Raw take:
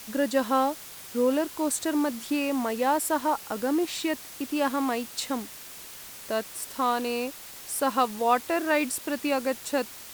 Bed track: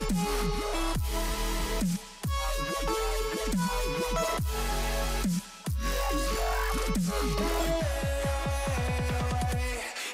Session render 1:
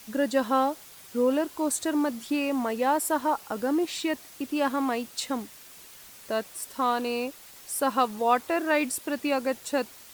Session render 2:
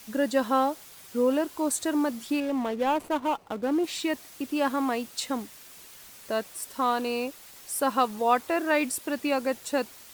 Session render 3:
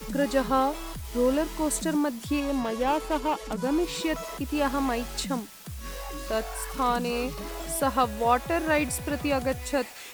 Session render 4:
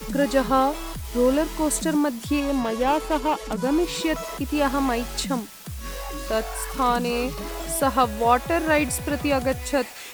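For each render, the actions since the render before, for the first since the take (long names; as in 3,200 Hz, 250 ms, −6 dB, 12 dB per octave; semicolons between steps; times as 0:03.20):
broadband denoise 6 dB, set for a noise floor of −44 dBFS
0:02.40–0:03.84: running median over 25 samples
mix in bed track −8 dB
level +4 dB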